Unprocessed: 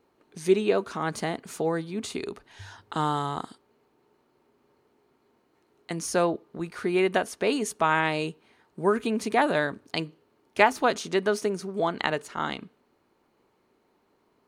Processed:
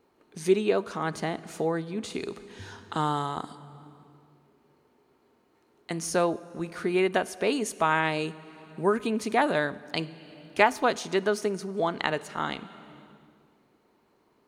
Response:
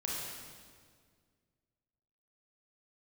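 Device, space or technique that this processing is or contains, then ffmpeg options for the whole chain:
compressed reverb return: -filter_complex "[0:a]asplit=2[s0][s1];[1:a]atrim=start_sample=2205[s2];[s1][s2]afir=irnorm=-1:irlink=0,acompressor=threshold=0.0224:ratio=6,volume=0.376[s3];[s0][s3]amix=inputs=2:normalize=0,asettb=1/sr,asplit=3[s4][s5][s6];[s4]atrim=end=1.104[s7];[s5]atrim=start=1.1:end=2.14,asetpts=PTS-STARTPTS,afade=t=in:d=0.004:c=qsin,afade=t=out:st=1.036:d=0.004:c=qsin,highshelf=f=5900:g=-6[s8];[s6]atrim=start=2.136[s9];[s7][s8]acrossfade=d=0.004:c1=hsin:c2=qsin[s10];[s10][s9]acrossfade=d=0.004:c1=qsin:c2=hsin,volume=0.841"

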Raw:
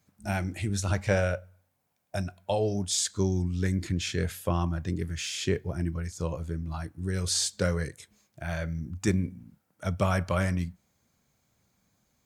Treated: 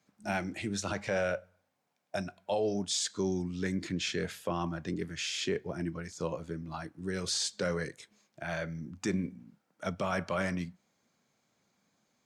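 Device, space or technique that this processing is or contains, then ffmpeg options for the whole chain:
DJ mixer with the lows and highs turned down: -filter_complex "[0:a]acrossover=split=160 7200:gain=0.0891 1 0.224[s0][s1][s2];[s0][s1][s2]amix=inputs=3:normalize=0,alimiter=limit=0.0794:level=0:latency=1:release=21"

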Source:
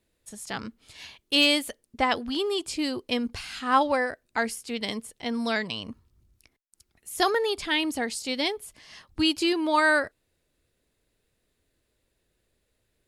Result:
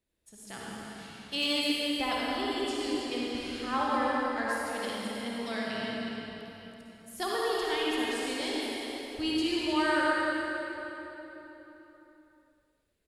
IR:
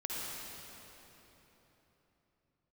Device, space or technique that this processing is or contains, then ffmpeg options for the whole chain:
cave: -filter_complex "[0:a]aecho=1:1:309:0.316[s0];[1:a]atrim=start_sample=2205[s1];[s0][s1]afir=irnorm=-1:irlink=0,volume=0.398"

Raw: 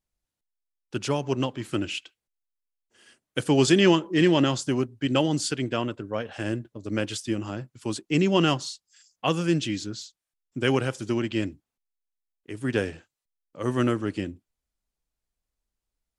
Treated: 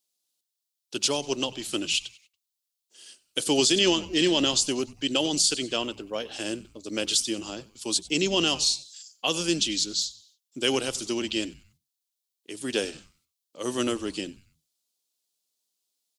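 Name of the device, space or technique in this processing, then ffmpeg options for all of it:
over-bright horn tweeter: -filter_complex "[0:a]highpass=290,equalizer=f=2900:w=0.36:g=-3,asplit=4[s0][s1][s2][s3];[s1]adelay=94,afreqshift=-140,volume=0.1[s4];[s2]adelay=188,afreqshift=-280,volume=0.0422[s5];[s3]adelay=282,afreqshift=-420,volume=0.0176[s6];[s0][s4][s5][s6]amix=inputs=4:normalize=0,highshelf=f=2600:t=q:w=1.5:g=12.5,alimiter=limit=0.266:level=0:latency=1:release=50"

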